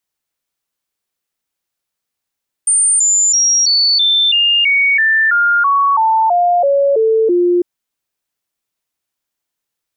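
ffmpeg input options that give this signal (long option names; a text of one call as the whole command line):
ffmpeg -f lavfi -i "aevalsrc='0.355*clip(min(mod(t,0.33),0.33-mod(t,0.33))/0.005,0,1)*sin(2*PI*8950*pow(2,-floor(t/0.33)/3)*mod(t,0.33))':duration=4.95:sample_rate=44100" out.wav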